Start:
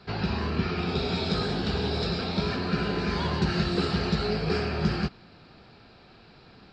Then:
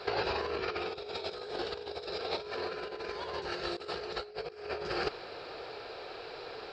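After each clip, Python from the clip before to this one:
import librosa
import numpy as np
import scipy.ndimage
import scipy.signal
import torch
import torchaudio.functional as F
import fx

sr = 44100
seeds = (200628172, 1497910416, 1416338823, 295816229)

y = fx.low_shelf_res(x, sr, hz=310.0, db=-13.0, q=3.0)
y = fx.over_compress(y, sr, threshold_db=-35.0, ratio=-0.5)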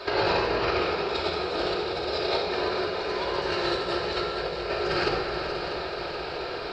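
y = fx.echo_heads(x, sr, ms=214, heads='second and third', feedback_pct=67, wet_db=-10.5)
y = fx.room_shoebox(y, sr, seeds[0], volume_m3=2000.0, walls='mixed', distance_m=2.7)
y = y * 10.0 ** (4.5 / 20.0)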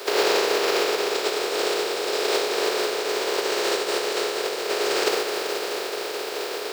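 y = fx.spec_flatten(x, sr, power=0.31)
y = fx.highpass_res(y, sr, hz=420.0, q=4.9)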